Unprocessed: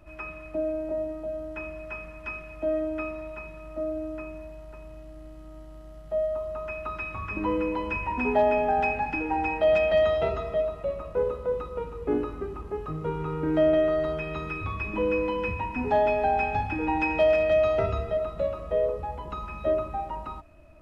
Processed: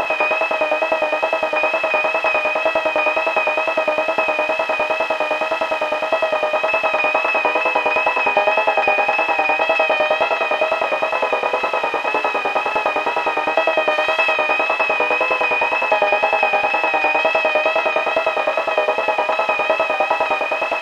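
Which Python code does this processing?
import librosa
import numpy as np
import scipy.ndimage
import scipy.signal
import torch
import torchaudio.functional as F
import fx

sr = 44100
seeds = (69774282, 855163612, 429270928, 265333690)

p1 = fx.bin_compress(x, sr, power=0.2)
p2 = fx.tilt_shelf(p1, sr, db=-4.0, hz=970.0, at=(13.91, 14.33))
p3 = fx.rider(p2, sr, range_db=10, speed_s=0.5)
p4 = p2 + (p3 * librosa.db_to_amplitude(1.0))
p5 = fx.filter_lfo_highpass(p4, sr, shape='saw_up', hz=9.8, low_hz=550.0, high_hz=2900.0, q=0.81)
p6 = fx.wow_flutter(p5, sr, seeds[0], rate_hz=2.1, depth_cents=46.0)
y = p6 + fx.room_flutter(p6, sr, wall_m=8.4, rt60_s=0.21, dry=0)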